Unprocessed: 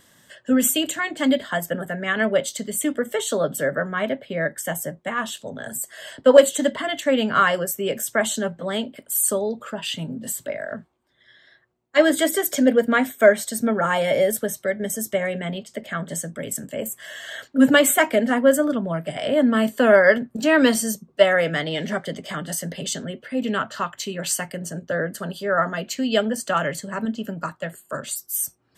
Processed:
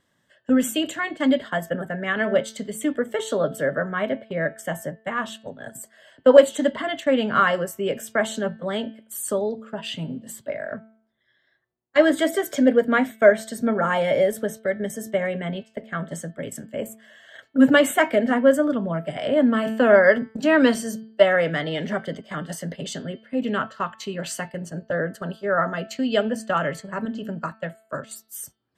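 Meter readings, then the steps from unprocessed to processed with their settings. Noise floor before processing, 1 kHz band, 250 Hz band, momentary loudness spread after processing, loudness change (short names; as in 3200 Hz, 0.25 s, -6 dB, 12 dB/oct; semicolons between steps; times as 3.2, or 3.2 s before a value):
-59 dBFS, -1.0 dB, -0.5 dB, 16 LU, -1.0 dB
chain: gate -32 dBFS, range -11 dB; LPF 2700 Hz 6 dB/oct; de-hum 221.1 Hz, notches 22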